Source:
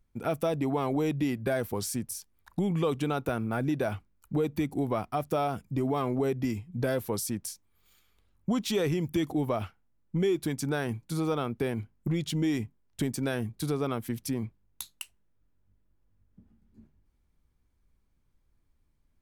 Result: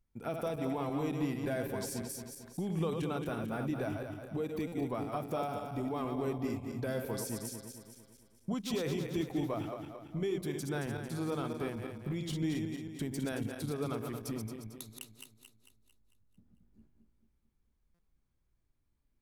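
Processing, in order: backward echo that repeats 112 ms, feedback 69%, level -5 dB; buffer glitch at 4.67/17.94 s, samples 256, times 8; trim -8 dB

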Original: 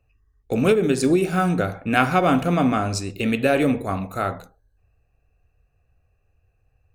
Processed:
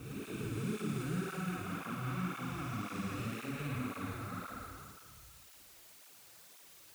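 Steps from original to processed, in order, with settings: spectral blur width 982 ms; reverb removal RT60 0.66 s; gate with hold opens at -59 dBFS; peaking EQ 1.1 kHz +11 dB 1 oct; peak limiter -24.5 dBFS, peak gain reduction 15 dB; amplifier tone stack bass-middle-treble 6-0-2; word length cut 12-bit, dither triangular; on a send: flutter echo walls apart 9.5 m, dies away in 1.1 s; on the sum: cancelling through-zero flanger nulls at 1.9 Hz, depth 5.2 ms; trim +14.5 dB

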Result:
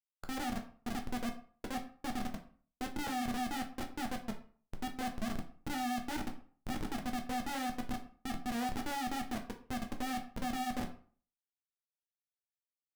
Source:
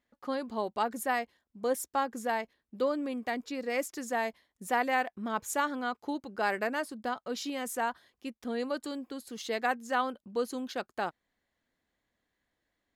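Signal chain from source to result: hum notches 60/120/180/240/300/360/420 Hz; reverse; compression 8:1, threshold -36 dBFS, peak gain reduction 13 dB; reverse; auto-wah 250–1700 Hz, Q 12, down, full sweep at -45.5 dBFS; Schmitt trigger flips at -52 dBFS; formant shift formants +6 st; on a send: reverberation RT60 0.45 s, pre-delay 7 ms, DRR 3 dB; on the sum: trim +14 dB

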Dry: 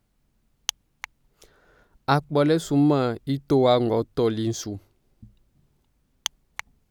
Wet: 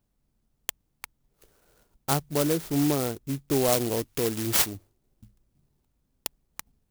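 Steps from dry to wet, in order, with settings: 3.72–4.73 s: resonant high shelf 3.4 kHz +13.5 dB, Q 3; sampling jitter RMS 0.13 ms; trim -5 dB

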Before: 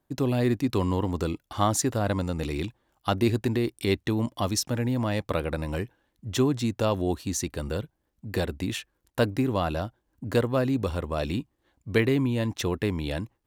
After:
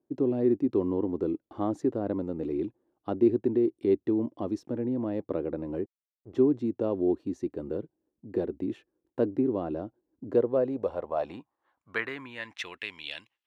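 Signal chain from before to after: 5.84–6.37 s: hysteresis with a dead band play -30 dBFS; band-pass sweep 350 Hz -> 2.9 kHz, 10.22–12.96 s; trim +4 dB

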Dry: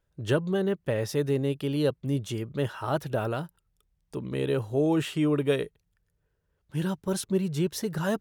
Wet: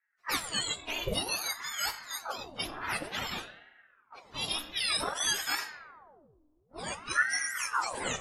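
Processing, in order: spectrum inverted on a logarithmic axis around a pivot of 1.2 kHz; dynamic bell 1.4 kHz, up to +5 dB, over -49 dBFS, Q 1.2; FDN reverb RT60 1.6 s, low-frequency decay 1.4×, high-frequency decay 0.55×, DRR 7 dB; level-controlled noise filter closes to 620 Hz, open at -26 dBFS; ring modulator with a swept carrier 970 Hz, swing 85%, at 0.54 Hz

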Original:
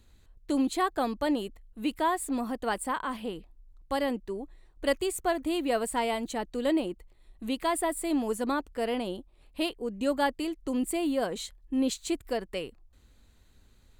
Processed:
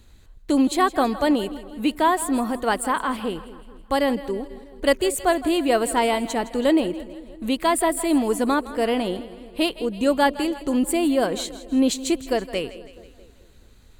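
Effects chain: two-band feedback delay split 500 Hz, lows 216 ms, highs 162 ms, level -15.5 dB; trim +8 dB

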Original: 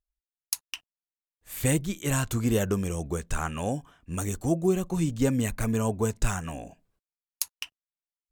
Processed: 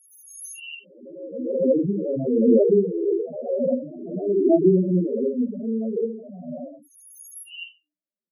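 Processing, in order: reverse spectral sustain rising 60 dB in 1.50 s; 4.99–7.52 s: compression 4:1, threshold -28 dBFS, peak gain reduction 10.5 dB; high-pass 190 Hz 24 dB/octave; resonant low shelf 750 Hz +7 dB, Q 3; doubling 44 ms -5 dB; simulated room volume 180 m³, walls furnished, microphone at 1.2 m; loudest bins only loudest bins 4; dynamic bell 2.5 kHz, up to +3 dB, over -50 dBFS, Q 3; trim -4 dB

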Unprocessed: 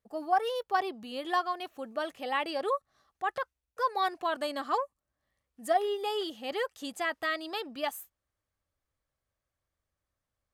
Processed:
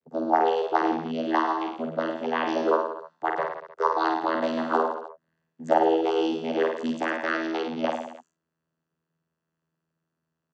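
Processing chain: vocoder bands 16, saw 81.1 Hz; reverse bouncing-ball echo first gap 50 ms, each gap 1.1×, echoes 5; trim +6.5 dB

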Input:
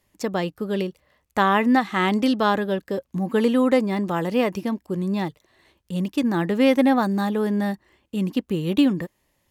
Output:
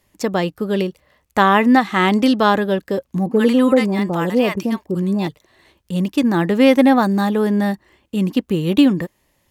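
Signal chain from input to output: 3.26–5.27 s: bands offset in time lows, highs 50 ms, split 820 Hz; trim +5.5 dB

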